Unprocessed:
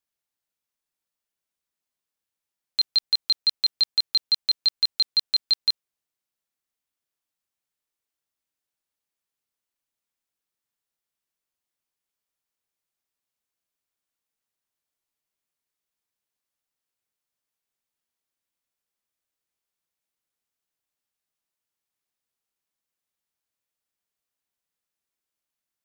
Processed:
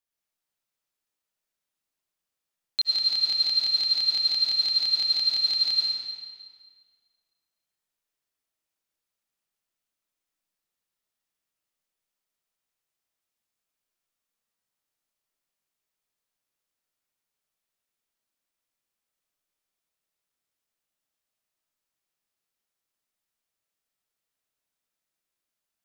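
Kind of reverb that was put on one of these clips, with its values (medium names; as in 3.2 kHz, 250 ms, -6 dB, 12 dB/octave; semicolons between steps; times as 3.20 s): algorithmic reverb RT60 1.8 s, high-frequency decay 0.9×, pre-delay 60 ms, DRR -3 dB; trim -3 dB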